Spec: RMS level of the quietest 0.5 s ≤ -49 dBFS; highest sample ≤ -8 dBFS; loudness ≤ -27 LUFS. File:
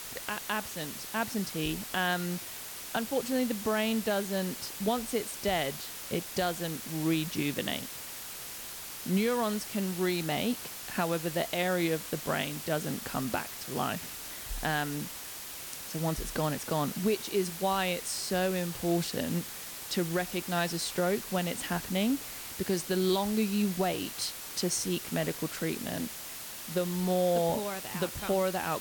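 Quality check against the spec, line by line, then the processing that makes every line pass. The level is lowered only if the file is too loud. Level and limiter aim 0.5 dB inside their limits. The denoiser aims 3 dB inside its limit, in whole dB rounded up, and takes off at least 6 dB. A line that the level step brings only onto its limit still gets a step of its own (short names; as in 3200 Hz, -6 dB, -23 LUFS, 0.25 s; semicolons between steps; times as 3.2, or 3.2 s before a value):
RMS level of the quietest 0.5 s -42 dBFS: fail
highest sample -17.5 dBFS: OK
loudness -32.0 LUFS: OK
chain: denoiser 10 dB, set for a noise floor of -42 dBFS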